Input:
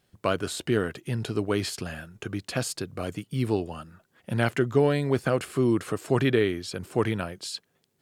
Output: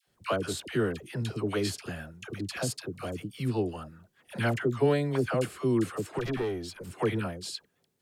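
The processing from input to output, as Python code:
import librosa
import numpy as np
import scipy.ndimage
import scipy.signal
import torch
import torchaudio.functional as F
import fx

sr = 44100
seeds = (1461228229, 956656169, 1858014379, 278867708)

y = fx.tube_stage(x, sr, drive_db=22.0, bias=0.65, at=(6.11, 6.81))
y = fx.dispersion(y, sr, late='lows', ms=77.0, hz=780.0)
y = F.gain(torch.from_numpy(y), -3.0).numpy()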